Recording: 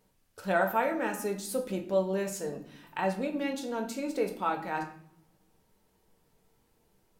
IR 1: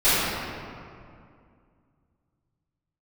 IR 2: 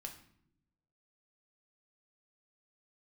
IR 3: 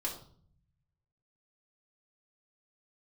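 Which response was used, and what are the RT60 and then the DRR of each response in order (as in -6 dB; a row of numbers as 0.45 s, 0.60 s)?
2; 2.3 s, no single decay rate, 0.55 s; -20.0 dB, 2.5 dB, -3.5 dB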